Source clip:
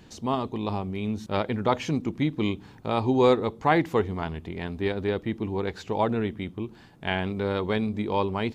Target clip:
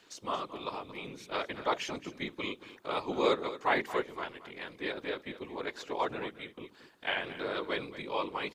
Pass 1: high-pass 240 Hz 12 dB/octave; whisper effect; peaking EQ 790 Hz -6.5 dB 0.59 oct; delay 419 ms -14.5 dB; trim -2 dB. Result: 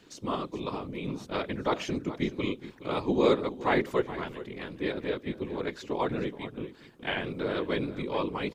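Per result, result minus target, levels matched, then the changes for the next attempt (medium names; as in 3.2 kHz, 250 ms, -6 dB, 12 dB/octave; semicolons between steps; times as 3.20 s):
echo 194 ms late; 250 Hz band +5.5 dB
change: delay 225 ms -14.5 dB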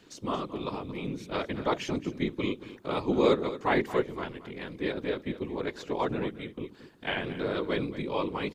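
250 Hz band +5.0 dB
change: high-pass 570 Hz 12 dB/octave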